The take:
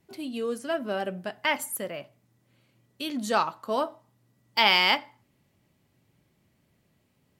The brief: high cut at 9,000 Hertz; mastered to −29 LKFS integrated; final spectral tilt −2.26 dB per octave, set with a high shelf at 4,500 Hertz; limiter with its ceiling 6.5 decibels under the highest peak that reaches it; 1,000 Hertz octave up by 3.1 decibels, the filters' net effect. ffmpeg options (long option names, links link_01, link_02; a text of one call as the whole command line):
ffmpeg -i in.wav -af "lowpass=9000,equalizer=frequency=1000:width_type=o:gain=3.5,highshelf=frequency=4500:gain=5.5,volume=-2dB,alimiter=limit=-11.5dB:level=0:latency=1" out.wav